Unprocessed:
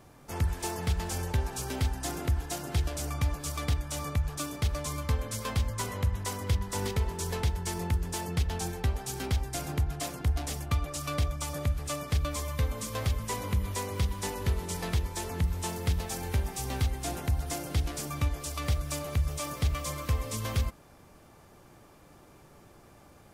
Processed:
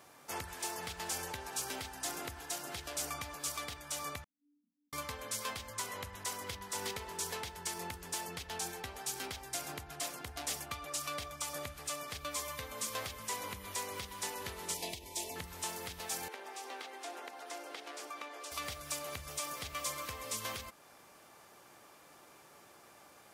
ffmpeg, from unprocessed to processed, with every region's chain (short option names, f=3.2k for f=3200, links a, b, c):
-filter_complex "[0:a]asettb=1/sr,asplit=3[a][b][c];[a]atrim=end=4.244[d];[b]atrim=start=4.24:end=4.93,asetpts=PTS-STARTPTS,afade=t=in:d=0.004:c=qsin,afade=t=out:st=0.686:d=0.004:c=qsin,asuperpass=centerf=230:order=20:qfactor=2,aderivative,asplit=2[e][f];[f]adelay=34,volume=-4.5dB[g];[e][g]amix=inputs=2:normalize=0,atrim=end_sample=30429[h];[c]atrim=start=4.926[i];[d][h]acrossfade=d=0.004:c1=hsin:c2=qsin[j];[j][i]acrossfade=d=0.004:c1=qsin:c2=hsin,asettb=1/sr,asplit=3[k][l][m];[k]atrim=end=14.744[n];[l]atrim=start=14.74:end=15.36,asetpts=PTS-STARTPTS,afade=t=in:d=0.004:c=qsin,afade=t=out:st=0.616:d=0.004:c=qsin,aecho=1:1:3.1:0.33,atrim=end_sample=27342,acompressor=threshold=-27dB:ratio=6:attack=3.2:release=140:knee=1:detection=peak,asuperstop=centerf=1400:order=4:qfactor=1[o];[m]atrim=start=15.356[p];[n][o]acrossfade=d=0.004:c1=hsin:c2=qsin[q];[q][p]acrossfade=d=0.004:c1=qsin:c2=hsin,asettb=1/sr,asplit=3[r][s][t];[r]atrim=end=16.284[u];[s]atrim=start=16.28:end=18.52,asetpts=PTS-STARTPTS,afade=t=in:d=0.004:c=qsin,afade=t=out:st=2.236:d=0.004:c=qsin,highpass=f=320:w=0.5412,highpass=f=320:w=1.3066,aemphasis=mode=reproduction:type=75kf,acompressor=threshold=-42dB:ratio=2:attack=3.2:release=140:knee=1:detection=peak[v];[t]atrim=start=18.516[w];[u][v]acrossfade=d=0.004:c1=hsin:c2=qsin[x];[x][w]acrossfade=d=0.004:c1=qsin:c2=hsin,highpass=f=930:p=1,alimiter=level_in=5dB:limit=-24dB:level=0:latency=1:release=315,volume=-5dB,volume=2.5dB"